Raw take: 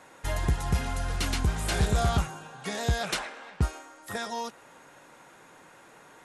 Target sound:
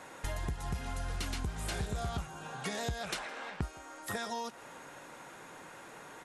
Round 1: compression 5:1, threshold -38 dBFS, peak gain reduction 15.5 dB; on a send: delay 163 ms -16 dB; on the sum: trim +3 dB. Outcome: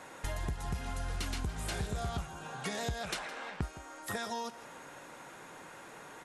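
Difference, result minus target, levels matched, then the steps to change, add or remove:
echo-to-direct +8 dB
change: delay 163 ms -24 dB

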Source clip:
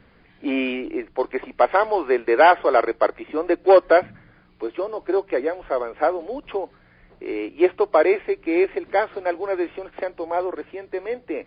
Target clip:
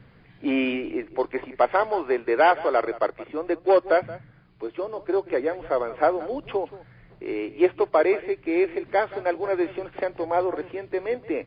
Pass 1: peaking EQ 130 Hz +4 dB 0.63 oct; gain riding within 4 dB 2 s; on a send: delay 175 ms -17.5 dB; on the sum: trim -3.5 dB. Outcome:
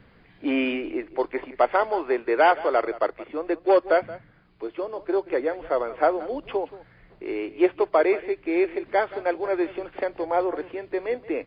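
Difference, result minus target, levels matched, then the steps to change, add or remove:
125 Hz band -5.5 dB
change: peaking EQ 130 Hz +12.5 dB 0.63 oct

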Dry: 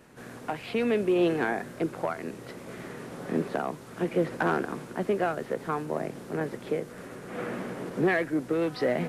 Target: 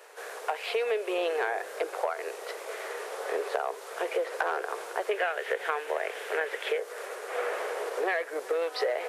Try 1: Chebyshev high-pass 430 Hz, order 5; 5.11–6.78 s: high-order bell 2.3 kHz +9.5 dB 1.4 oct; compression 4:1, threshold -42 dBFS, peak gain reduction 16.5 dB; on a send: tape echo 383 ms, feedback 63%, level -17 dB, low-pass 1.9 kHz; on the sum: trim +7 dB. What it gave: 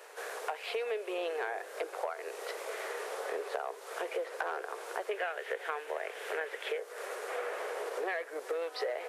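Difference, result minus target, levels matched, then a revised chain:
compression: peak gain reduction +6.5 dB
Chebyshev high-pass 430 Hz, order 5; 5.11–6.78 s: high-order bell 2.3 kHz +9.5 dB 1.4 oct; compression 4:1, threshold -33.5 dBFS, peak gain reduction 10 dB; on a send: tape echo 383 ms, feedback 63%, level -17 dB, low-pass 1.9 kHz; on the sum: trim +7 dB

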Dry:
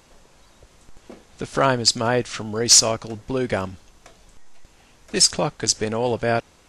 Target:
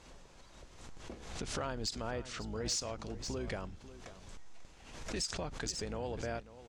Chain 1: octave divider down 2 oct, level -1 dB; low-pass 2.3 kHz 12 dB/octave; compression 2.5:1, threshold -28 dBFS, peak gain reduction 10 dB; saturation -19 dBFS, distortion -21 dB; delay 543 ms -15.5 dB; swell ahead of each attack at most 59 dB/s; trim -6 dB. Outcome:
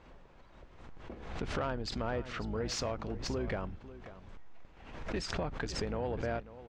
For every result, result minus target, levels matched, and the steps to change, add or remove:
8 kHz band -8.5 dB; compression: peak gain reduction -6 dB
change: low-pass 8.2 kHz 12 dB/octave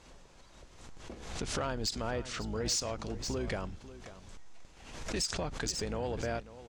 compression: peak gain reduction -4.5 dB
change: compression 2.5:1, threshold -35.5 dBFS, peak gain reduction 16 dB

